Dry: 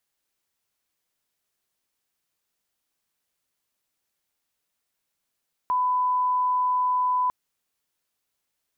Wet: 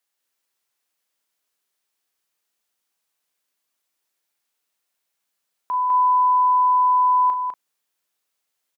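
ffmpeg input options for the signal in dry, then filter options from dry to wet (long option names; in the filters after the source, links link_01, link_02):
-f lavfi -i "sine=frequency=1000:duration=1.6:sample_rate=44100,volume=-1.94dB"
-filter_complex "[0:a]highpass=frequency=360:poles=1,asplit=2[link_01][link_02];[link_02]adelay=36,volume=-9dB[link_03];[link_01][link_03]amix=inputs=2:normalize=0,asplit=2[link_04][link_05];[link_05]aecho=0:1:202:0.668[link_06];[link_04][link_06]amix=inputs=2:normalize=0"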